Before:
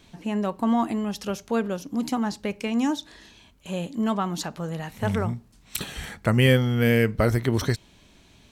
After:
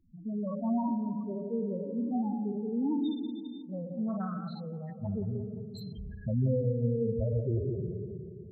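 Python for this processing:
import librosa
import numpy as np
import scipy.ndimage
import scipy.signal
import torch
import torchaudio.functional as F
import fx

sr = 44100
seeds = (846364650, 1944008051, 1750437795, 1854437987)

p1 = fx.spec_trails(x, sr, decay_s=2.41)
p2 = fx.dynamic_eq(p1, sr, hz=3700.0, q=1.6, threshold_db=-42.0, ratio=4.0, max_db=4)
p3 = fx.spec_topn(p2, sr, count=4)
p4 = p3 + fx.echo_wet_lowpass(p3, sr, ms=175, feedback_pct=57, hz=650.0, wet_db=-8, dry=0)
p5 = fx.doppler_dist(p4, sr, depth_ms=0.15, at=(3.72, 5.83))
y = p5 * librosa.db_to_amplitude(-8.0)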